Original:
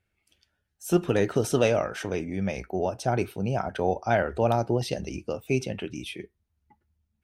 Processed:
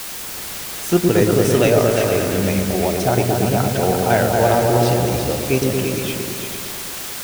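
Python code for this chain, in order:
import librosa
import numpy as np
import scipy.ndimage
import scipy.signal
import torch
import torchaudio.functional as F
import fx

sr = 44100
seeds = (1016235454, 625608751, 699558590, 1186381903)

y = fx.quant_dither(x, sr, seeds[0], bits=6, dither='triangular')
y = fx.echo_opening(y, sr, ms=115, hz=400, octaves=2, feedback_pct=70, wet_db=0)
y = y * 10.0 ** (6.0 / 20.0)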